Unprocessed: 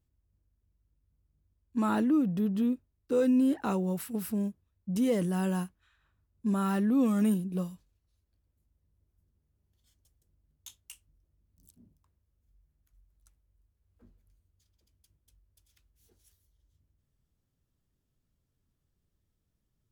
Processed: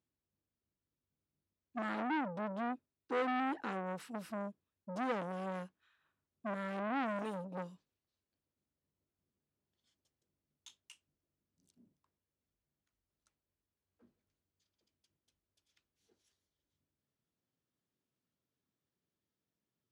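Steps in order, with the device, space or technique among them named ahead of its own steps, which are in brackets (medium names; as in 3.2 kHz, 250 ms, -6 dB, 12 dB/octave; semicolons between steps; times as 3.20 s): 7.18–7.58 s: comb 7 ms, depth 65%; public-address speaker with an overloaded transformer (transformer saturation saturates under 1.3 kHz; band-pass 220–5400 Hz); trim -4 dB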